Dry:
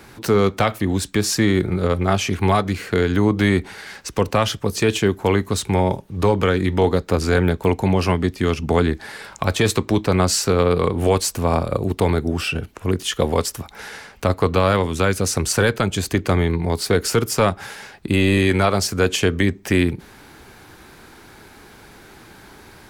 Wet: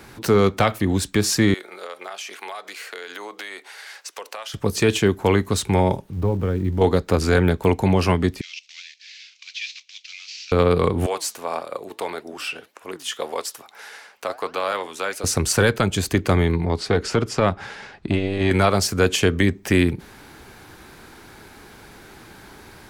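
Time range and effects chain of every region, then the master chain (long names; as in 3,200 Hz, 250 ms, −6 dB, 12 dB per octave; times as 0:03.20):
0:01.54–0:04.54: four-pole ladder high-pass 420 Hz, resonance 25% + tilt shelving filter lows −5 dB, about 1,100 Hz + downward compressor 10 to 1, threshold −29 dBFS
0:06.13–0:06.81: spike at every zero crossing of −17 dBFS + drawn EQ curve 100 Hz 0 dB, 560 Hz −8 dB, 9,800 Hz −27 dB
0:08.41–0:10.52: variable-slope delta modulation 32 kbit/s + Chebyshev high-pass filter 2,400 Hz, order 4
0:11.06–0:15.24: high-pass filter 530 Hz + flanger 1.7 Hz, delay 2.6 ms, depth 7 ms, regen +86%
0:16.64–0:18.51: high-frequency loss of the air 100 metres + saturating transformer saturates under 220 Hz
whole clip: no processing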